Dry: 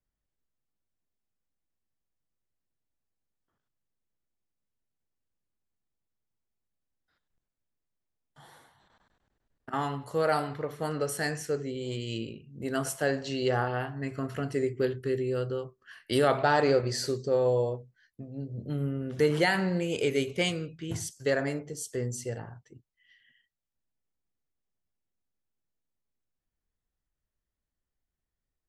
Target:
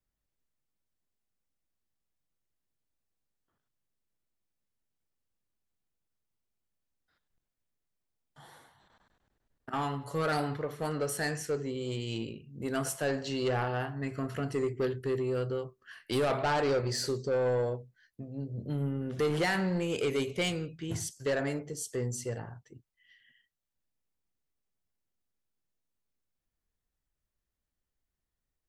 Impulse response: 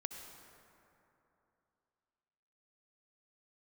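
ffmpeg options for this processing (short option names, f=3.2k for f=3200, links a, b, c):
-filter_complex "[0:a]asettb=1/sr,asplit=3[a][b][c];[a]atrim=end=10.044[d];[b]atrim=start=10.04:end=10.57,asetpts=PTS-STARTPTS,afade=t=in:d=0.004:c=qsin,afade=t=out:st=0.526:d=0.004:c=qsin,aecho=1:1:7.1:0.59,atrim=end_sample=23373[e];[c]atrim=start=10.566[f];[d][e]acrossfade=d=0.004:c1=hsin:c2=qsin[g];[g][f]acrossfade=d=0.004:c1=qsin:c2=hsin,asoftclip=type=tanh:threshold=-23.5dB"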